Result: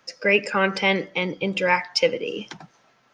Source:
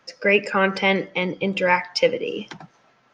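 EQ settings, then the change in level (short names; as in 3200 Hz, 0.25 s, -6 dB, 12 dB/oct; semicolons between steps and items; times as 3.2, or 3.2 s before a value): high shelf 4600 Hz +7.5 dB; -2.0 dB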